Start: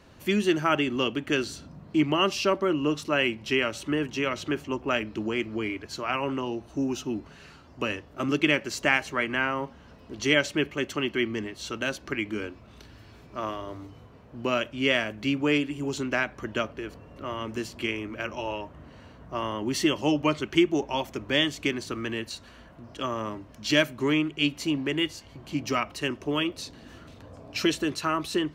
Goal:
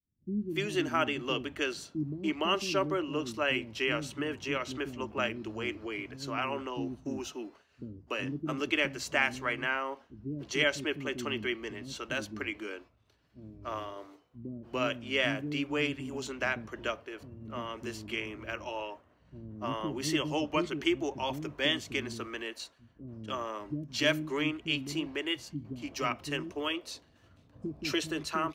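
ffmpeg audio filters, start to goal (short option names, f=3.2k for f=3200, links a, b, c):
-filter_complex "[0:a]agate=range=-33dB:threshold=-38dB:ratio=3:detection=peak,acrossover=split=290[a][b];[b]adelay=290[c];[a][c]amix=inputs=2:normalize=0,volume=-4.5dB"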